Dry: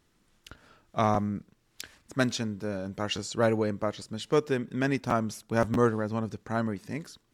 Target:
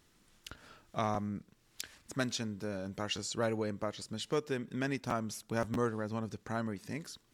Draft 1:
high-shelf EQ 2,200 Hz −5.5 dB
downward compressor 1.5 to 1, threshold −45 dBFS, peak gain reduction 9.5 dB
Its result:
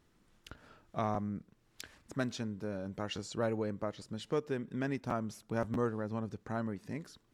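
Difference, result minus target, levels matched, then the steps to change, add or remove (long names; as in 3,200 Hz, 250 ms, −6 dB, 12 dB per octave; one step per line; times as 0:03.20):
4,000 Hz band −5.5 dB
change: high-shelf EQ 2,200 Hz +4.5 dB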